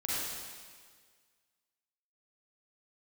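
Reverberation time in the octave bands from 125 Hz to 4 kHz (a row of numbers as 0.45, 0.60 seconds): 1.6, 1.7, 1.8, 1.7, 1.7, 1.7 seconds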